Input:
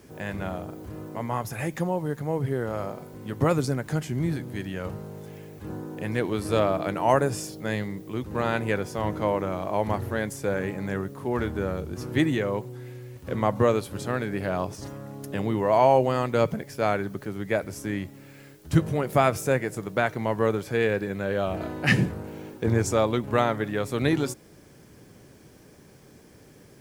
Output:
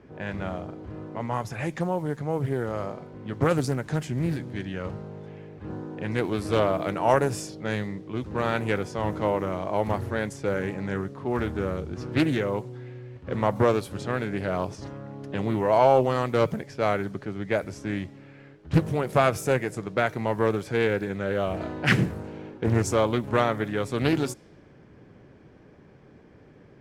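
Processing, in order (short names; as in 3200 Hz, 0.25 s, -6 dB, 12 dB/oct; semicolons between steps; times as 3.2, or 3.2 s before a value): low-pass opened by the level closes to 2100 Hz, open at -22 dBFS; Doppler distortion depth 0.65 ms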